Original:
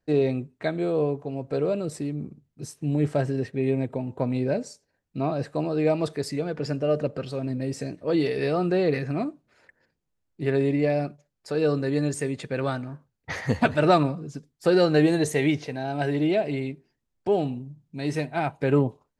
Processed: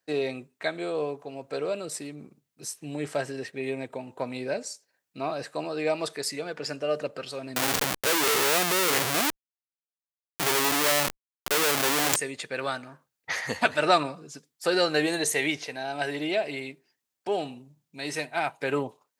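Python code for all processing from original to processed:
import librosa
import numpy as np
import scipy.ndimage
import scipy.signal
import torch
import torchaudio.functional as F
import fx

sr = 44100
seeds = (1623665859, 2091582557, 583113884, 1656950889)

y = fx.chain(x, sr, fx.high_shelf(hz=9600.0, db=-9.5),
    fx.schmitt(flips_db=-36.0),
    fx.leveller(passes=3), at=(7.56, 12.16))
y = fx.highpass(y, sr, hz=1300.0, slope=6)
y = fx.high_shelf(y, sr, hz=8900.0, db=6.5)
y = y * librosa.db_to_amplitude(4.5)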